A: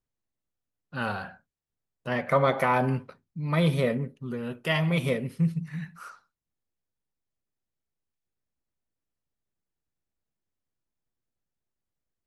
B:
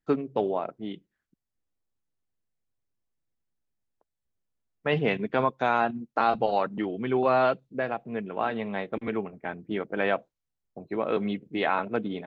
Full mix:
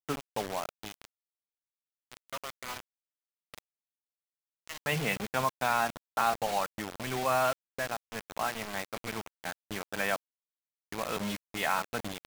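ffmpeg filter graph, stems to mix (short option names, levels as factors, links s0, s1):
-filter_complex "[0:a]acrossover=split=420 4100:gain=0.0794 1 0.0891[s0][s1][s2];[s0][s1][s2]amix=inputs=3:normalize=0,aeval=exprs='val(0)+0.000708*(sin(2*PI*60*n/s)+sin(2*PI*2*60*n/s)/2+sin(2*PI*3*60*n/s)/3+sin(2*PI*4*60*n/s)/4+sin(2*PI*5*60*n/s)/5)':c=same,volume=0.211[s3];[1:a]volume=0.891[s4];[s3][s4]amix=inputs=2:normalize=0,equalizer=f=360:t=o:w=1.4:g=-12.5,acrusher=bits=5:mix=0:aa=0.000001"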